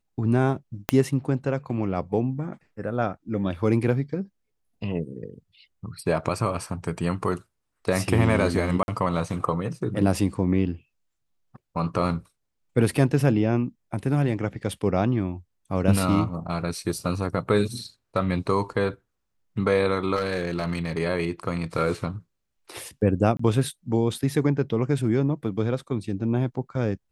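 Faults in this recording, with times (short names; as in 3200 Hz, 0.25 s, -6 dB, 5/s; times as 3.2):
0.89 pop -6 dBFS
8.83–8.88 gap 51 ms
20.16–20.99 clipped -20 dBFS
23.37–23.39 gap 24 ms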